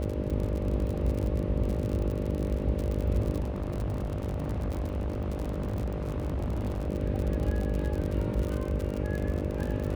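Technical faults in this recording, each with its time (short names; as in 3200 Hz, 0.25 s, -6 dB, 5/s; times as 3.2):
buzz 50 Hz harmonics 12 -34 dBFS
crackle 58/s -31 dBFS
3.39–6.9 clipped -27 dBFS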